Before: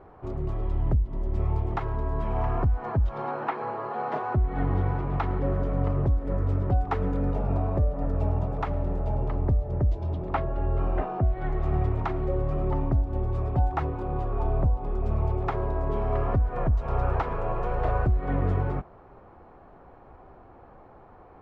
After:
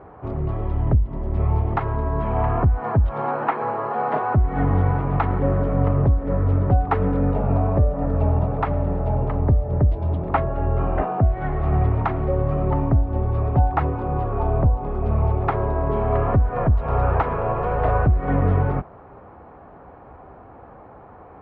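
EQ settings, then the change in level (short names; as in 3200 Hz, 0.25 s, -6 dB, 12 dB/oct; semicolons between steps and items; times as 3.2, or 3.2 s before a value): HPF 53 Hz; LPF 2600 Hz 12 dB/oct; notch 360 Hz, Q 12; +7.5 dB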